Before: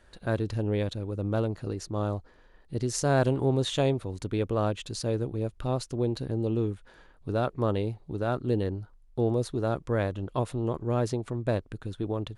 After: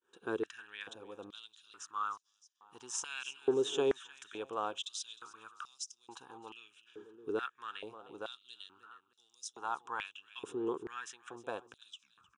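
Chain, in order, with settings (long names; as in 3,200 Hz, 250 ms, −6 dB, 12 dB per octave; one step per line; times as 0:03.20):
turntable brake at the end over 0.51 s
downward expander −50 dBFS
phaser with its sweep stopped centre 3,000 Hz, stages 8
repeating echo 308 ms, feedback 42%, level −16 dB
high-pass on a step sequencer 2.3 Hz 420–5,300 Hz
level −4 dB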